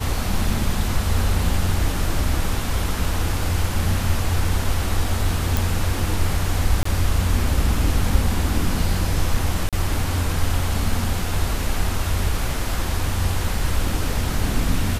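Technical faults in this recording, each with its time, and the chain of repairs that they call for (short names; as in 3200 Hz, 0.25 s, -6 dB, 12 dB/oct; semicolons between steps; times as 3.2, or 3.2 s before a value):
5.57 pop
6.83–6.85 gap 24 ms
9.69–9.73 gap 37 ms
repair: de-click; interpolate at 6.83, 24 ms; interpolate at 9.69, 37 ms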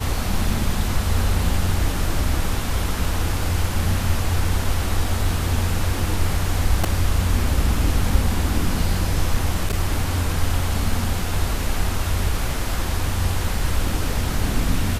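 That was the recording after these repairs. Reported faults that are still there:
none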